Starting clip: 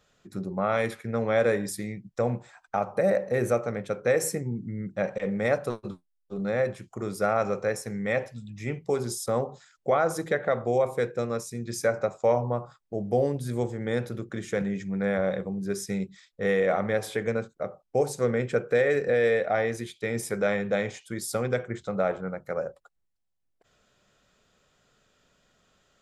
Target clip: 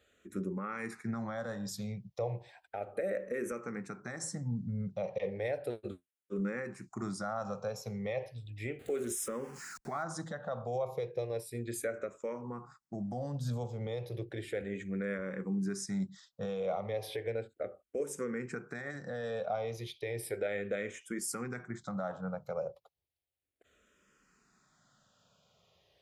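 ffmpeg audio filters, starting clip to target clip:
ffmpeg -i in.wav -filter_complex "[0:a]asettb=1/sr,asplit=3[link_01][link_02][link_03];[link_01]atrim=end=8.794[link_04];[link_02]atrim=start=8.79:end=10.03,asetpts=PTS-STARTPTS,afade=type=in:duration=0.004:curve=qsin,afade=type=out:start_time=1.236:duration=0.004:curve=qsin,aeval=exprs='val(0)+0.5*0.01*sgn(val(0))':channel_layout=same[link_05];[link_03]atrim=start=10.026[link_06];[link_04][link_05]acrossfade=duration=0.004:curve1=hsin:curve2=qsin[link_07];[link_07][link_06]acrossfade=duration=0.004:curve1=qsin:curve2=hsin,highpass=50,alimiter=limit=-23.5dB:level=0:latency=1:release=246,asplit=2[link_08][link_09];[link_09]afreqshift=-0.34[link_10];[link_08][link_10]amix=inputs=2:normalize=1" out.wav

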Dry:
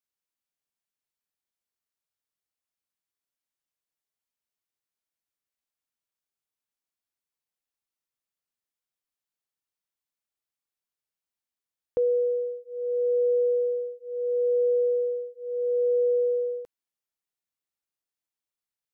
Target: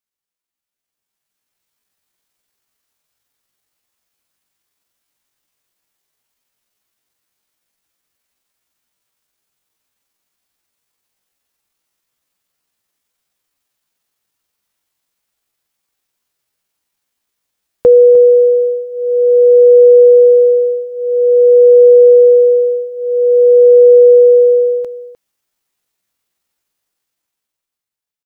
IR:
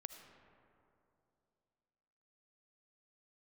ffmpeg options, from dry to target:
-filter_complex "[0:a]dynaudnorm=framelen=160:gausssize=11:maxgain=14.5dB,atempo=0.67,asplit=2[link_01][link_02];[link_02]adelay=303.2,volume=-14dB,highshelf=frequency=4000:gain=-6.82[link_03];[link_01][link_03]amix=inputs=2:normalize=0,volume=3.5dB"

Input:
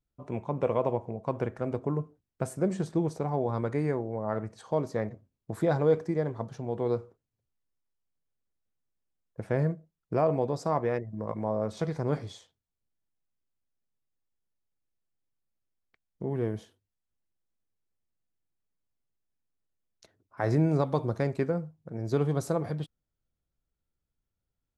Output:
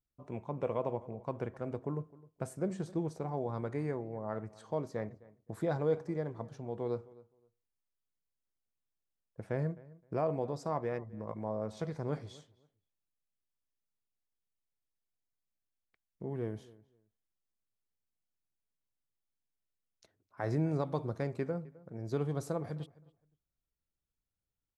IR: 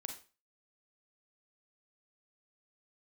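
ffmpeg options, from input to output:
-filter_complex "[0:a]asplit=2[link_01][link_02];[link_02]adelay=260,lowpass=frequency=2500:poles=1,volume=-21dB,asplit=2[link_03][link_04];[link_04]adelay=260,lowpass=frequency=2500:poles=1,volume=0.19[link_05];[link_01][link_03][link_05]amix=inputs=3:normalize=0,volume=-7dB"

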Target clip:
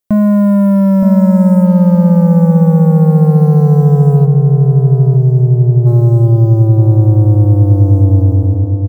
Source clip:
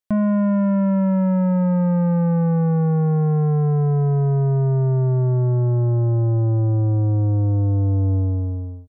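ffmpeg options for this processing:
ffmpeg -i in.wav -filter_complex "[0:a]asplit=3[link_01][link_02][link_03];[link_01]afade=type=out:start_time=4.24:duration=0.02[link_04];[link_02]equalizer=frequency=1100:width=0.52:gain=-14.5,afade=type=in:start_time=4.24:duration=0.02,afade=type=out:start_time=5.85:duration=0.02[link_05];[link_03]afade=type=in:start_time=5.85:duration=0.02[link_06];[link_04][link_05][link_06]amix=inputs=3:normalize=0,acrossover=split=710[link_07][link_08];[link_07]acontrast=71[link_09];[link_08]acrusher=bits=4:mode=log:mix=0:aa=0.000001[link_10];[link_09][link_10]amix=inputs=2:normalize=0,asplit=2[link_11][link_12];[link_12]adelay=920,lowpass=frequency=960:poles=1,volume=-5.5dB,asplit=2[link_13][link_14];[link_14]adelay=920,lowpass=frequency=960:poles=1,volume=0.36,asplit=2[link_15][link_16];[link_16]adelay=920,lowpass=frequency=960:poles=1,volume=0.36,asplit=2[link_17][link_18];[link_18]adelay=920,lowpass=frequency=960:poles=1,volume=0.36[link_19];[link_11][link_13][link_15][link_17][link_19]amix=inputs=5:normalize=0,crystalizer=i=1:c=0,volume=3dB" out.wav

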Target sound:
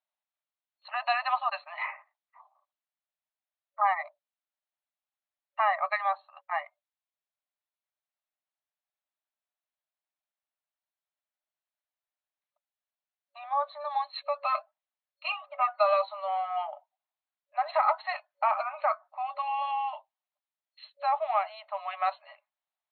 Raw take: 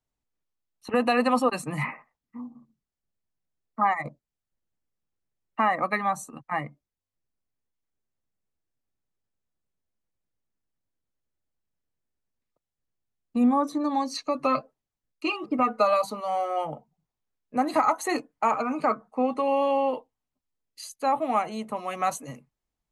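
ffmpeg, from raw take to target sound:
ffmpeg -i in.wav -af "afftfilt=real='re*between(b*sr/4096,560,4300)':imag='im*between(b*sr/4096,560,4300)':win_size=4096:overlap=0.75,volume=-2dB" out.wav

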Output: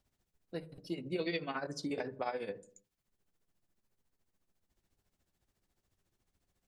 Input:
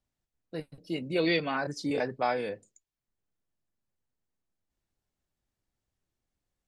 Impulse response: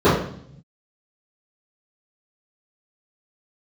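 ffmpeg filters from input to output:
-filter_complex "[0:a]tremolo=f=14:d=0.74,acompressor=threshold=-55dB:ratio=2,asplit=2[link_01][link_02];[1:a]atrim=start_sample=2205,afade=type=out:start_time=0.37:duration=0.01,atrim=end_sample=16758[link_03];[link_02][link_03]afir=irnorm=-1:irlink=0,volume=-41dB[link_04];[link_01][link_04]amix=inputs=2:normalize=0,volume=8.5dB"

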